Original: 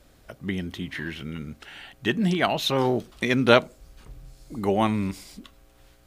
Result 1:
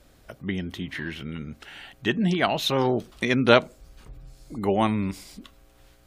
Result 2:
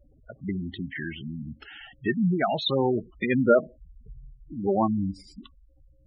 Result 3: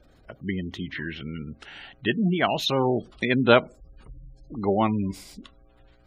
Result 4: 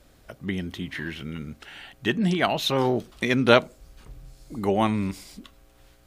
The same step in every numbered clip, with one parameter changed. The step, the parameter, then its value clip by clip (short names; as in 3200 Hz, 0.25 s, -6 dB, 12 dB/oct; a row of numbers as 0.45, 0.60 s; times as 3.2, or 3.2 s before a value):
spectral gate, under each frame's peak: -45, -10, -25, -60 dB